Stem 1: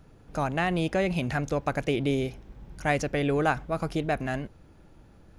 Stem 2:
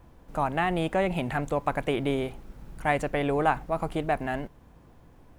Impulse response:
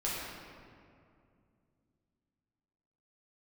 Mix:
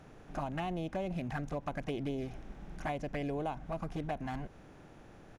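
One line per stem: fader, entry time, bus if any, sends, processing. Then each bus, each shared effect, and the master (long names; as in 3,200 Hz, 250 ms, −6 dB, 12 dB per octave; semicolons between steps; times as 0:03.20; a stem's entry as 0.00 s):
−15.0 dB, 0.00 s, no send, compressor on every frequency bin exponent 0.6; downward compressor, threshold −27 dBFS, peak gain reduction 10 dB
−3.5 dB, 2.2 ms, polarity flipped, no send, adaptive Wiener filter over 15 samples; flanger swept by the level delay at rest 10 ms, full sweep at −22.5 dBFS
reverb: not used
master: downward compressor 5 to 1, threshold −33 dBFS, peak gain reduction 8 dB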